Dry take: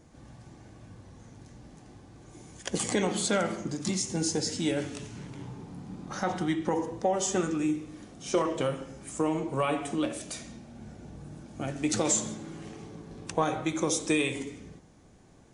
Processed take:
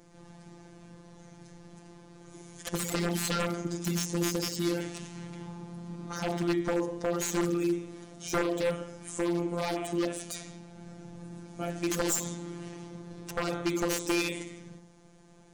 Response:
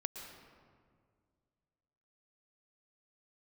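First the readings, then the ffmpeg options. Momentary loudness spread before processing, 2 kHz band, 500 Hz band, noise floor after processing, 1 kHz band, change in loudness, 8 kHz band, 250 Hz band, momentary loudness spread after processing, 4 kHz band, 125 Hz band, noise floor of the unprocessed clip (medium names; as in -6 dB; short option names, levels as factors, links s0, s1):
18 LU, -0.5 dB, -1.5 dB, -55 dBFS, -4.0 dB, -2.0 dB, -3.5 dB, -1.0 dB, 22 LU, -1.5 dB, +0.5 dB, -56 dBFS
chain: -af "afftfilt=real='hypot(re,im)*cos(PI*b)':imag='0':win_size=1024:overlap=0.75,bandreject=f=176.2:t=h:w=4,bandreject=f=352.4:t=h:w=4,aeval=exprs='0.0596*(abs(mod(val(0)/0.0596+3,4)-2)-1)':c=same,volume=1.58"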